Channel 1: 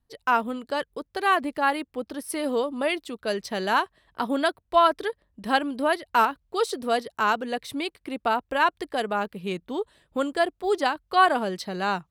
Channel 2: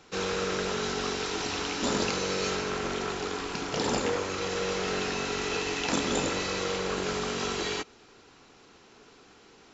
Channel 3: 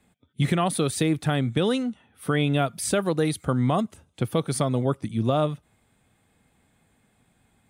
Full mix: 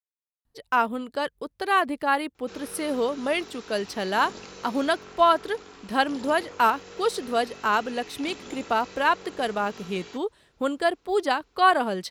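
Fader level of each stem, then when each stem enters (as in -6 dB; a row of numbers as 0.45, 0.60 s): 0.0 dB, -13.5 dB, off; 0.45 s, 2.35 s, off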